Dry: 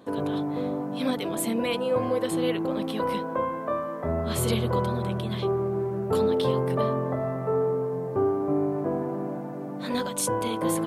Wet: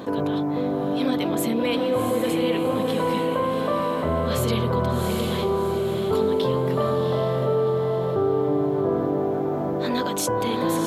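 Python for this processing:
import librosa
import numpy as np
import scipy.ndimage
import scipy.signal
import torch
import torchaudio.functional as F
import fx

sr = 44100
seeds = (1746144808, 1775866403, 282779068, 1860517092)

y = fx.peak_eq(x, sr, hz=9300.0, db=-11.5, octaves=0.29)
y = fx.echo_diffused(y, sr, ms=732, feedback_pct=43, wet_db=-4.0)
y = fx.env_flatten(y, sr, amount_pct=50)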